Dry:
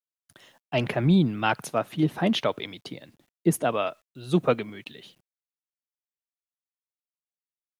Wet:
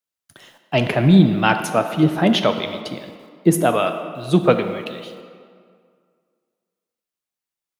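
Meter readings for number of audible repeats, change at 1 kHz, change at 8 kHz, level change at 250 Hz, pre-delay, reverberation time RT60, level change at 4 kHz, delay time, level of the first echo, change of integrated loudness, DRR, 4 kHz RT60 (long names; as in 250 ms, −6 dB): no echo audible, +8.0 dB, +7.5 dB, +8.0 dB, 9 ms, 2.1 s, +7.5 dB, no echo audible, no echo audible, +7.5 dB, 7.0 dB, 1.3 s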